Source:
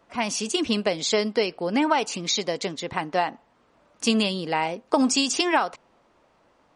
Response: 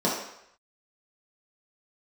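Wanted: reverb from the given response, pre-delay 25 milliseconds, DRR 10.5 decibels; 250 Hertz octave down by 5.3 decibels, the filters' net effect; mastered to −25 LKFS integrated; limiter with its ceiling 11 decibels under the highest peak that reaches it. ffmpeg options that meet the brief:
-filter_complex "[0:a]equalizer=frequency=250:width_type=o:gain=-6.5,alimiter=limit=-18dB:level=0:latency=1,asplit=2[link_01][link_02];[1:a]atrim=start_sample=2205,adelay=25[link_03];[link_02][link_03]afir=irnorm=-1:irlink=0,volume=-24.5dB[link_04];[link_01][link_04]amix=inputs=2:normalize=0,volume=3.5dB"

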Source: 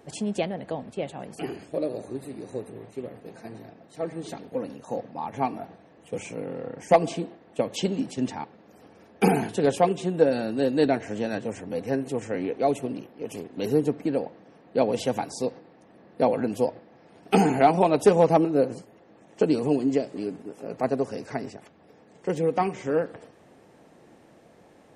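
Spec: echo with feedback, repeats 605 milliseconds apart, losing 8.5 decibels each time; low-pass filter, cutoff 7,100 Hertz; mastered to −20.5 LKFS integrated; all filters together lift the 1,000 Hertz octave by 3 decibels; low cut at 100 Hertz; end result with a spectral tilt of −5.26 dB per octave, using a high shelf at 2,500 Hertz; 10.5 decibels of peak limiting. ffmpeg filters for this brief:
ffmpeg -i in.wav -af "highpass=100,lowpass=7100,equalizer=frequency=1000:width_type=o:gain=4,highshelf=frequency=2500:gain=3.5,alimiter=limit=-14dB:level=0:latency=1,aecho=1:1:605|1210|1815|2420:0.376|0.143|0.0543|0.0206,volume=8dB" out.wav

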